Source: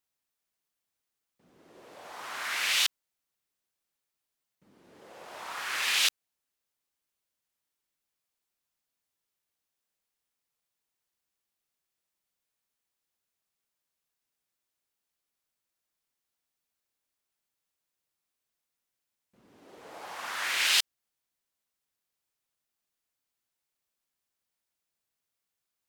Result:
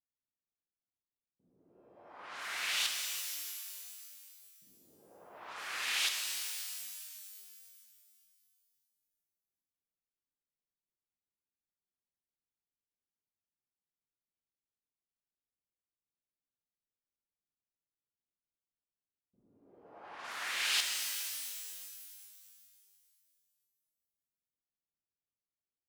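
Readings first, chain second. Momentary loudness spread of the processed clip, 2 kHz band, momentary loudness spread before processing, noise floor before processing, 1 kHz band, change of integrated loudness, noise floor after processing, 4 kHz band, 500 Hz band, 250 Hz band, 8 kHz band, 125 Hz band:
21 LU, -6.0 dB, 19 LU, under -85 dBFS, -6.5 dB, -8.0 dB, under -85 dBFS, -5.5 dB, -6.5 dB, -6.5 dB, -2.5 dB, n/a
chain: low-pass opened by the level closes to 330 Hz, open at -33.5 dBFS; shimmer reverb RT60 2.4 s, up +12 st, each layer -2 dB, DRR 3.5 dB; gain -8 dB

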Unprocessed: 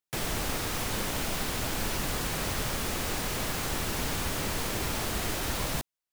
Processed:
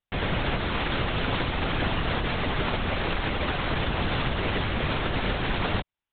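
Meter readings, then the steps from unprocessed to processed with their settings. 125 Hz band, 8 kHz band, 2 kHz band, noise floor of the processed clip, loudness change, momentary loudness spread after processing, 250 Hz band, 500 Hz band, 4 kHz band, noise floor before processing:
+6.5 dB, under -40 dB, +6.0 dB, under -85 dBFS, +3.5 dB, 1 LU, +5.5 dB, +5.5 dB, +3.0 dB, under -85 dBFS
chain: LPC vocoder at 8 kHz whisper; gain +5.5 dB

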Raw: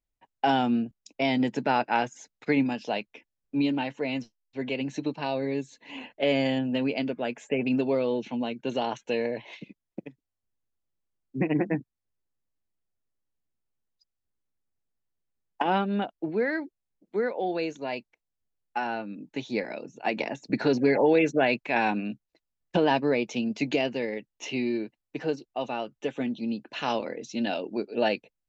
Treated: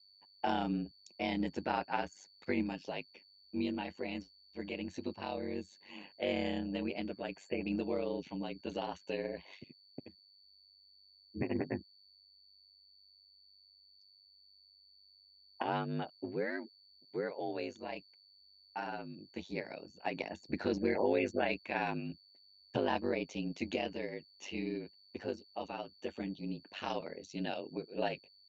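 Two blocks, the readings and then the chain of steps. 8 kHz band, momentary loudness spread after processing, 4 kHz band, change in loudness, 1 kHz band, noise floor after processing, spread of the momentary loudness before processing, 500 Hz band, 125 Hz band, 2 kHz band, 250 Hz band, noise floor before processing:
n/a, 12 LU, -9.0 dB, -10.0 dB, -10.0 dB, -64 dBFS, 12 LU, -10.0 dB, -8.0 dB, -10.0 dB, -10.5 dB, -85 dBFS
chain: whine 4500 Hz -51 dBFS; ring modulator 49 Hz; gain -7 dB

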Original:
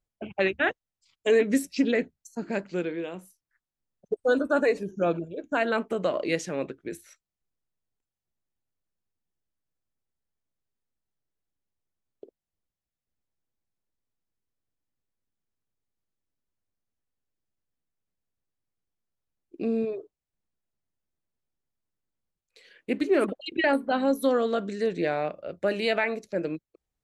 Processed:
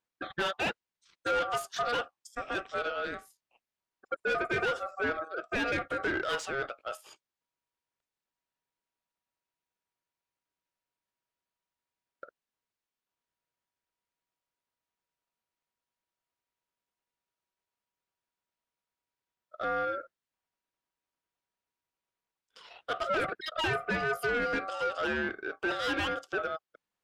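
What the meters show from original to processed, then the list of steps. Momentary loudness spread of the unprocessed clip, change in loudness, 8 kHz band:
12 LU, -5.0 dB, -3.5 dB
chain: overdrive pedal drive 23 dB, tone 2900 Hz, clips at -11 dBFS; ring modulator 960 Hz; gain -8.5 dB

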